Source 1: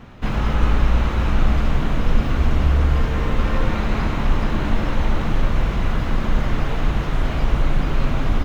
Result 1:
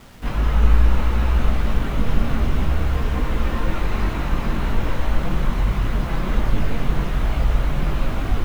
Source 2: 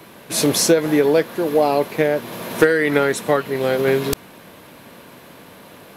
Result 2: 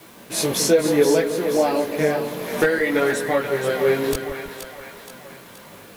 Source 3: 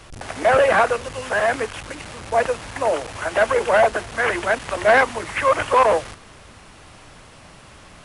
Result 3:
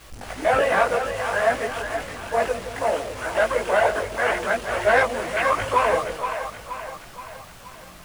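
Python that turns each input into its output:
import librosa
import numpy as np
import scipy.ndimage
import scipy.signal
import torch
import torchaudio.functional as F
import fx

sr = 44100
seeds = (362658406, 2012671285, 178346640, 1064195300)

y = fx.chorus_voices(x, sr, voices=4, hz=0.59, base_ms=19, depth_ms=3.0, mix_pct=50)
y = fx.quant_dither(y, sr, seeds[0], bits=8, dither='none')
y = fx.echo_split(y, sr, split_hz=580.0, low_ms=164, high_ms=474, feedback_pct=52, wet_db=-7.5)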